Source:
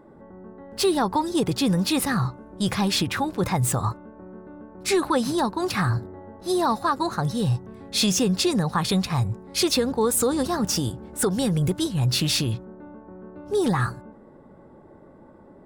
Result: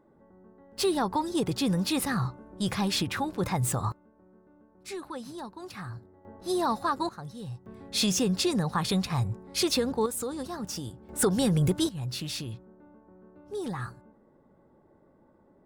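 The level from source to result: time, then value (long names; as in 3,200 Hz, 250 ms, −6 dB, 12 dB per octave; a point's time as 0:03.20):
−12 dB
from 0:00.78 −5 dB
from 0:03.92 −16.5 dB
from 0:06.25 −5 dB
from 0:07.09 −16 dB
from 0:07.66 −4.5 dB
from 0:10.06 −11.5 dB
from 0:11.09 −1.5 dB
from 0:11.89 −12 dB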